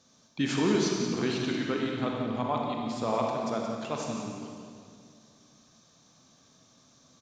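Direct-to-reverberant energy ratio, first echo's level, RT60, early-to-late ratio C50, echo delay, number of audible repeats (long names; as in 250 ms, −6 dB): −1.0 dB, −9.5 dB, 2.2 s, 0.0 dB, 176 ms, 1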